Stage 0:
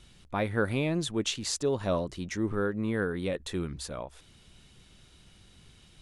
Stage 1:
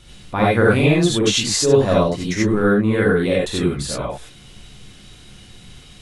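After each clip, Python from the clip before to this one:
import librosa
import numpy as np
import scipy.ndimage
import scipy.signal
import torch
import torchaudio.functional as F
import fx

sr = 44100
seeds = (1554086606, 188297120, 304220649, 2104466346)

y = fx.rev_gated(x, sr, seeds[0], gate_ms=110, shape='rising', drr_db=-5.0)
y = y * librosa.db_to_amplitude(7.5)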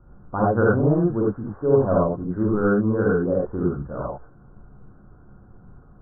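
y = scipy.signal.sosfilt(scipy.signal.butter(16, 1500.0, 'lowpass', fs=sr, output='sos'), x)
y = y * librosa.db_to_amplitude(-3.5)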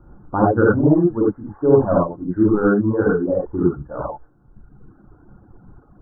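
y = fx.dereverb_blind(x, sr, rt60_s=1.3)
y = fx.small_body(y, sr, hz=(310.0, 850.0), ring_ms=45, db=8)
y = y * librosa.db_to_amplitude(3.5)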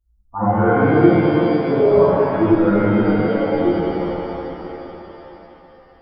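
y = fx.bin_expand(x, sr, power=2.0)
y = fx.rev_shimmer(y, sr, seeds[1], rt60_s=3.6, semitones=7, shimmer_db=-8, drr_db=-8.0)
y = y * librosa.db_to_amplitude(-3.5)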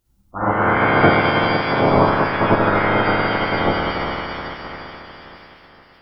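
y = fx.spec_clip(x, sr, under_db=24)
y = y * librosa.db_to_amplitude(-1.0)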